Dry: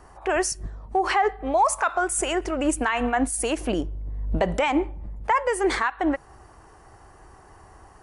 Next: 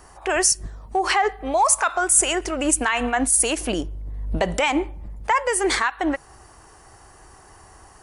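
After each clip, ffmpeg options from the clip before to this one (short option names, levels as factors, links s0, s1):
-af "highshelf=f=2800:g=11.5"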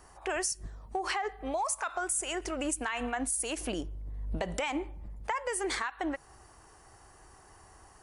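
-af "acompressor=threshold=0.0891:ratio=6,volume=0.398"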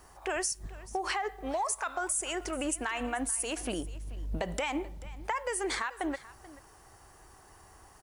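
-af "acrusher=bits=10:mix=0:aa=0.000001,aecho=1:1:435:0.119"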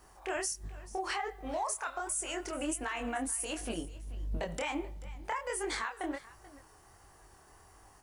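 -af "flanger=delay=19.5:depth=7.3:speed=1.4"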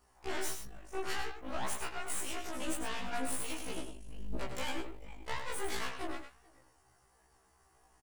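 -filter_complex "[0:a]aeval=exprs='0.0891*(cos(1*acos(clip(val(0)/0.0891,-1,1)))-cos(1*PI/2))+0.02*(cos(3*acos(clip(val(0)/0.0891,-1,1)))-cos(3*PI/2))+0.00316*(cos(5*acos(clip(val(0)/0.0891,-1,1)))-cos(5*PI/2))+0.002*(cos(7*acos(clip(val(0)/0.0891,-1,1)))-cos(7*PI/2))+0.0112*(cos(8*acos(clip(val(0)/0.0891,-1,1)))-cos(8*PI/2))':c=same,asplit=2[s0][s1];[s1]aecho=0:1:101:0.422[s2];[s0][s2]amix=inputs=2:normalize=0,afftfilt=real='re*1.73*eq(mod(b,3),0)':imag='im*1.73*eq(mod(b,3),0)':win_size=2048:overlap=0.75,volume=1.26"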